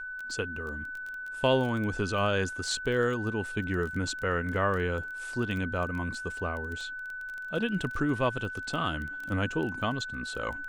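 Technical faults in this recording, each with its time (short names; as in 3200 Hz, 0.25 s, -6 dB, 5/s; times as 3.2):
crackle 14/s -34 dBFS
tone 1500 Hz -36 dBFS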